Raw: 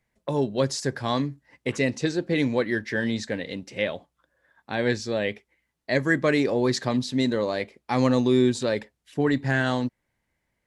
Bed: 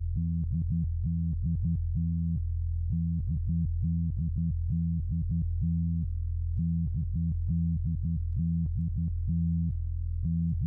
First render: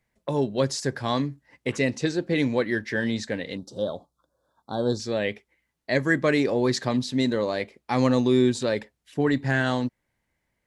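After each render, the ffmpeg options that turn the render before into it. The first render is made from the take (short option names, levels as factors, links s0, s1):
-filter_complex "[0:a]asettb=1/sr,asplit=3[s0][s1][s2];[s0]atrim=end=3.574[s3];[s1]atrim=start=3.57:end=5,asetpts=PTS-STARTPTS,afade=t=in:d=0.004:c=qsin,afade=t=out:st=1.426:d=0.004:c=qsin,asuperstop=centerf=2200:order=8:qfactor=0.98[s4];[s2]atrim=start=4.996[s5];[s3][s4]acrossfade=d=0.004:c1=hsin:c2=qsin[s6];[s6][s5]acrossfade=d=0.004:c1=qsin:c2=hsin"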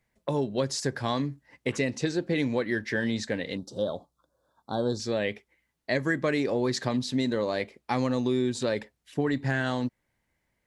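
-af "acompressor=threshold=0.0708:ratio=4"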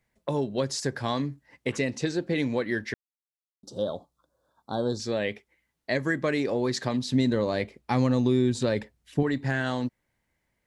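-filter_complex "[0:a]asettb=1/sr,asplit=3[s0][s1][s2];[s0]atrim=end=7.114[s3];[s1]atrim=start=7.11:end=9.23,asetpts=PTS-STARTPTS,afade=t=in:d=0.004:c=qsin,afade=t=out:st=2.116:d=0.004:c=qsin,lowshelf=f=180:g=11[s4];[s2]atrim=start=9.226[s5];[s3][s4]acrossfade=d=0.004:c1=hsin:c2=qsin[s6];[s6][s5]acrossfade=d=0.004:c1=qsin:c2=hsin,asplit=3[s7][s8][s9];[s7]atrim=end=2.94,asetpts=PTS-STARTPTS,afade=t=out:st=2.936:d=0.004:c=hsin[s10];[s8]atrim=start=2.94:end=3.63,asetpts=PTS-STARTPTS,volume=0[s11];[s9]atrim=start=3.63,asetpts=PTS-STARTPTS,afade=t=in:d=0.004:c=hsin[s12];[s10][s11][s12]concat=n=3:v=0:a=1"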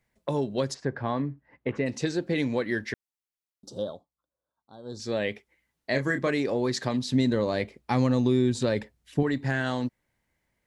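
-filter_complex "[0:a]asplit=3[s0][s1][s2];[s0]afade=t=out:st=0.73:d=0.02[s3];[s1]lowpass=1800,afade=t=in:st=0.73:d=0.02,afade=t=out:st=1.85:d=0.02[s4];[s2]afade=t=in:st=1.85:d=0.02[s5];[s3][s4][s5]amix=inputs=3:normalize=0,asettb=1/sr,asplit=3[s6][s7][s8];[s6]atrim=end=5.904[s9];[s7]atrim=start=5.9:end=6.3,asetpts=PTS-STARTPTS,afade=t=in:d=0.004:c=qsin,afade=t=out:st=0.396:d=0.004:c=qsin,asplit=2[s10][s11];[s11]adelay=29,volume=0.422[s12];[s10][s12]amix=inputs=2:normalize=0,atrim=end_sample=17640[s13];[s8]atrim=start=6.296[s14];[s9][s13]acrossfade=d=0.004:c1=hsin:c2=qsin[s15];[s15][s14]acrossfade=d=0.004:c1=qsin:c2=hsin,asplit=3[s16][s17][s18];[s16]atrim=end=4.05,asetpts=PTS-STARTPTS,afade=t=out:st=3.73:d=0.32:silence=0.125893[s19];[s17]atrim=start=4.05:end=4.83,asetpts=PTS-STARTPTS,volume=0.126[s20];[s18]atrim=start=4.83,asetpts=PTS-STARTPTS,afade=t=in:d=0.32:silence=0.125893[s21];[s19][s20][s21]concat=n=3:v=0:a=1"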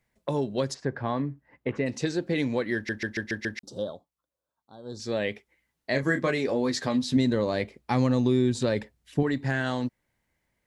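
-filter_complex "[0:a]asettb=1/sr,asplit=3[s0][s1][s2];[s0]atrim=end=6.024[s3];[s1]atrim=start=6.02:end=7.17,asetpts=PTS-STARTPTS,afade=t=in:d=0.004:c=qsin,afade=t=out:st=1.146:d=0.004:c=qsin,asplit=2[s4][s5];[s5]adelay=12,volume=0.501[s6];[s4][s6]amix=inputs=2:normalize=0,atrim=end_sample=50715[s7];[s2]atrim=start=7.166[s8];[s3][s7]acrossfade=d=0.004:c1=hsin:c2=qsin[s9];[s9][s8]acrossfade=d=0.004:c1=qsin:c2=hsin,asplit=7[s10][s11][s12][s13][s14][s15][s16];[s10]atrim=end=2.892[s17];[s11]atrim=start=2.748:end=2.892[s18];[s12]atrim=start=2.748:end=2.892[s19];[s13]atrim=start=2.748:end=2.892[s20];[s14]atrim=start=2.748:end=2.892[s21];[s15]atrim=start=2.748:end=2.892[s22];[s16]atrim=start=3.588[s23];[s17][s18]acrossfade=d=0.004:c1=hsin:c2=hsin[s24];[s24][s19]acrossfade=d=0.004:c1=hsin:c2=hsin[s25];[s25][s20]acrossfade=d=0.004:c1=hsin:c2=hsin[s26];[s26][s21]acrossfade=d=0.004:c1=hsin:c2=hsin[s27];[s27][s22]acrossfade=d=0.004:c1=hsin:c2=hsin[s28];[s28][s23]acrossfade=d=0.004:c1=hsin:c2=hsin"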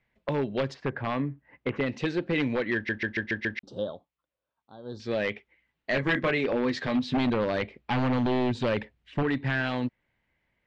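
-af "aeval=exprs='0.106*(abs(mod(val(0)/0.106+3,4)-2)-1)':c=same,lowpass=f=2800:t=q:w=1.6"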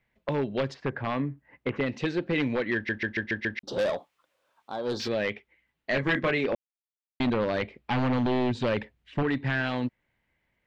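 -filter_complex "[0:a]asplit=3[s0][s1][s2];[s0]afade=t=out:st=3.67:d=0.02[s3];[s1]asplit=2[s4][s5];[s5]highpass=f=720:p=1,volume=17.8,asoftclip=type=tanh:threshold=0.112[s6];[s4][s6]amix=inputs=2:normalize=0,lowpass=f=4200:p=1,volume=0.501,afade=t=in:st=3.67:d=0.02,afade=t=out:st=5.07:d=0.02[s7];[s2]afade=t=in:st=5.07:d=0.02[s8];[s3][s7][s8]amix=inputs=3:normalize=0,asplit=3[s9][s10][s11];[s9]atrim=end=6.55,asetpts=PTS-STARTPTS,afade=t=out:st=6.546:d=0.004:c=hsin[s12];[s10]atrim=start=6.55:end=7.2,asetpts=PTS-STARTPTS,volume=0[s13];[s11]atrim=start=7.2,asetpts=PTS-STARTPTS,afade=t=in:d=0.004:c=hsin[s14];[s12][s13][s14]concat=n=3:v=0:a=1"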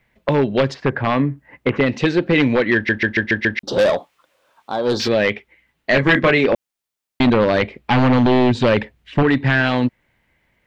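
-af "volume=3.76"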